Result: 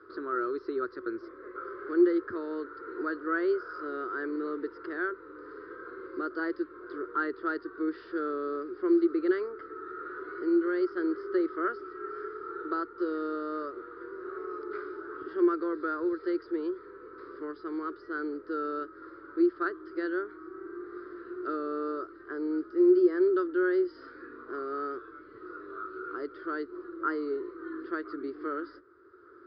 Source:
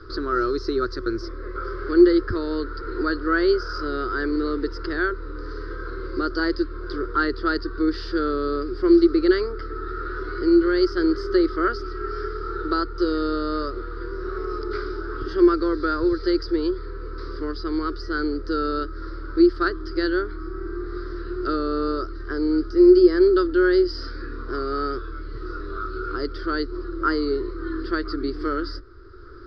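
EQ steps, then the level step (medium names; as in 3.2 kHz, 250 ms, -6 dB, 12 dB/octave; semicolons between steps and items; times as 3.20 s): band-pass 310–2300 Hz; distance through air 130 m; -6.5 dB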